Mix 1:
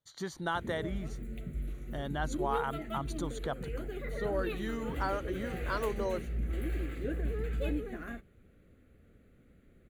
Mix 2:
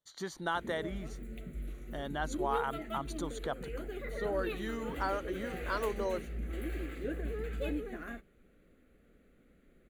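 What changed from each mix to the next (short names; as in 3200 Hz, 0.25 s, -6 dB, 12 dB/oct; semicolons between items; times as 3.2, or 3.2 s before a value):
master: add bell 95 Hz -13.5 dB 1.1 oct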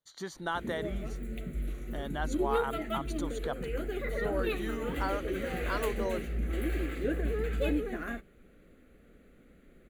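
background +6.0 dB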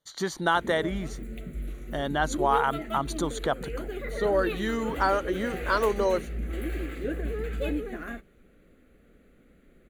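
speech +10.0 dB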